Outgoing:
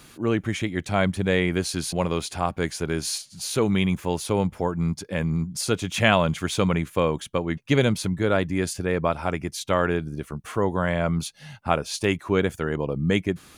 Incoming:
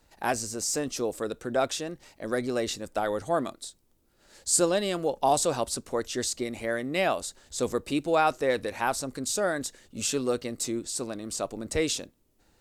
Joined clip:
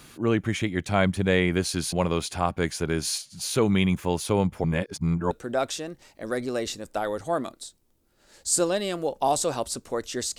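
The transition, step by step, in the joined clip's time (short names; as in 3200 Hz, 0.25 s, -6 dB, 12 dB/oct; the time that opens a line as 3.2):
outgoing
4.64–5.31 reverse
5.31 switch to incoming from 1.32 s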